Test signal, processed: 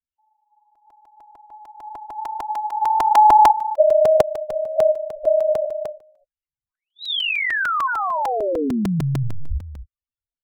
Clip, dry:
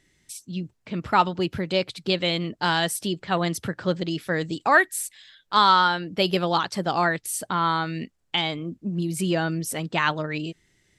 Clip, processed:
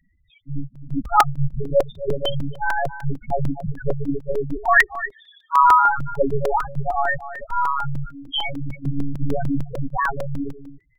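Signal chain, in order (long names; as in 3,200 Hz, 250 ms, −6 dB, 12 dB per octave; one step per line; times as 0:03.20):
single-tap delay 257 ms −13 dB
one-pitch LPC vocoder at 8 kHz 140 Hz
spectral peaks only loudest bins 4
regular buffer underruns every 0.15 s, samples 128, repeat, from 0:00.75
level +8 dB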